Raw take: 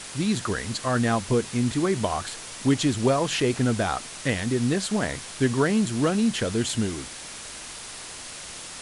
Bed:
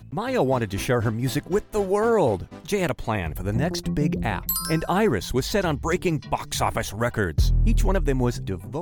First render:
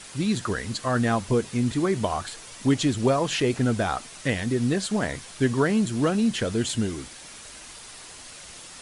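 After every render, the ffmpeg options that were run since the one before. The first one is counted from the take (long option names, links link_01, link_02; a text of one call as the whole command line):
ffmpeg -i in.wav -af "afftdn=noise_reduction=6:noise_floor=-39" out.wav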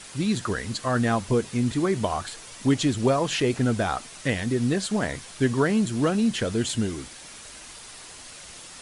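ffmpeg -i in.wav -af anull out.wav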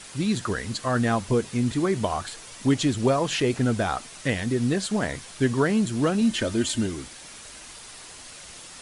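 ffmpeg -i in.wav -filter_complex "[0:a]asettb=1/sr,asplit=3[link_01][link_02][link_03];[link_01]atrim=end=6.214[link_04];[link_02]atrim=start=6.21:end=6.86,asetpts=PTS-STARTPTS,afade=type=in:duration=0.004:curve=qsin,afade=type=out:start_time=0.646:duration=0.004:curve=qsin,aecho=1:1:3.3:0.57,atrim=end_sample=28665[link_05];[link_03]atrim=start=6.856[link_06];[link_04][link_05]acrossfade=duration=0.004:curve1=hsin:curve2=qsin[link_07];[link_07][link_06]acrossfade=duration=0.004:curve1=qsin:curve2=hsin" out.wav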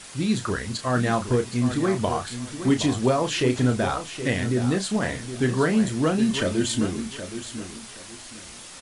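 ffmpeg -i in.wav -filter_complex "[0:a]asplit=2[link_01][link_02];[link_02]adelay=32,volume=-8dB[link_03];[link_01][link_03]amix=inputs=2:normalize=0,aecho=1:1:770|1540|2310:0.282|0.0733|0.0191" out.wav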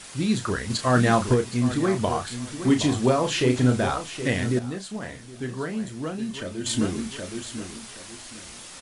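ffmpeg -i in.wav -filter_complex "[0:a]asettb=1/sr,asplit=3[link_01][link_02][link_03];[link_01]atrim=end=2.564[link_04];[link_02]atrim=start=2.56:end=3.9,asetpts=PTS-STARTPTS,afade=type=in:duration=0.004:curve=qsin,afade=type=out:start_time=1.336:duration=0.004:curve=qsin,asplit=2[link_05][link_06];[link_06]adelay=40,volume=-11dB[link_07];[link_05][link_07]amix=inputs=2:normalize=0,atrim=end_sample=59094[link_08];[link_03]atrim=start=3.896[link_09];[link_04][link_08]acrossfade=duration=0.004:curve1=hsin:curve2=qsin[link_10];[link_10][link_09]acrossfade=duration=0.004:curve1=qsin:curve2=hsin,asplit=5[link_11][link_12][link_13][link_14][link_15];[link_11]atrim=end=0.702[link_16];[link_12]atrim=start=0.698:end=1.342,asetpts=PTS-STARTPTS,volume=3.5dB[link_17];[link_13]atrim=start=1.338:end=4.592[link_18];[link_14]atrim=start=4.588:end=6.662,asetpts=PTS-STARTPTS,volume=-9dB[link_19];[link_15]atrim=start=6.658[link_20];[link_16][link_17]acrossfade=duration=0.004:curve1=hsin:curve2=hsin[link_21];[link_21][link_18]acrossfade=duration=0.004:curve1=hsin:curve2=hsin[link_22];[link_22][link_19]acrossfade=duration=0.004:curve1=hsin:curve2=hsin[link_23];[link_23][link_20]acrossfade=duration=0.004:curve1=hsin:curve2=hsin" out.wav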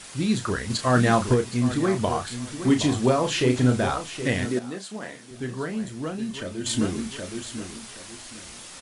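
ffmpeg -i in.wav -filter_complex "[0:a]asettb=1/sr,asplit=3[link_01][link_02][link_03];[link_01]atrim=end=4.454[link_04];[link_02]atrim=start=4.45:end=5.31,asetpts=PTS-STARTPTS,afade=type=in:duration=0.004:curve=qsin,afade=type=out:start_time=0.856:duration=0.004:curve=qsin,highpass=220[link_05];[link_03]atrim=start=5.306[link_06];[link_04][link_05]acrossfade=duration=0.004:curve1=hsin:curve2=qsin[link_07];[link_07][link_06]acrossfade=duration=0.004:curve1=qsin:curve2=hsin" out.wav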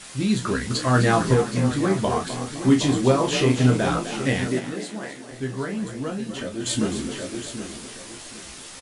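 ffmpeg -i in.wav -filter_complex "[0:a]asplit=2[link_01][link_02];[link_02]adelay=15,volume=-4.5dB[link_03];[link_01][link_03]amix=inputs=2:normalize=0,asplit=6[link_04][link_05][link_06][link_07][link_08][link_09];[link_05]adelay=256,afreqshift=46,volume=-11dB[link_10];[link_06]adelay=512,afreqshift=92,volume=-17.7dB[link_11];[link_07]adelay=768,afreqshift=138,volume=-24.5dB[link_12];[link_08]adelay=1024,afreqshift=184,volume=-31.2dB[link_13];[link_09]adelay=1280,afreqshift=230,volume=-38dB[link_14];[link_04][link_10][link_11][link_12][link_13][link_14]amix=inputs=6:normalize=0" out.wav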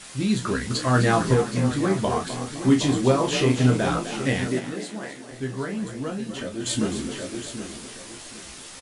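ffmpeg -i in.wav -af "volume=-1dB" out.wav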